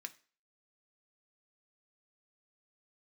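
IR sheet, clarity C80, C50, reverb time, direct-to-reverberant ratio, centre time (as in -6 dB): 23.5 dB, 19.0 dB, 0.40 s, 6.5 dB, 4 ms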